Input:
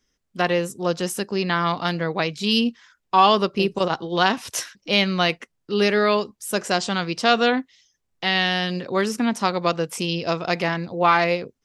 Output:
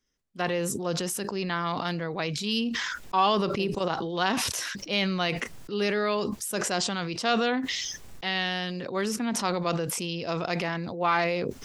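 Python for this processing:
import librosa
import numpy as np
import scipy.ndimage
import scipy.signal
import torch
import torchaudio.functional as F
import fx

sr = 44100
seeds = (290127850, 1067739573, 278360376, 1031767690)

y = fx.sustainer(x, sr, db_per_s=23.0)
y = y * 10.0 ** (-8.0 / 20.0)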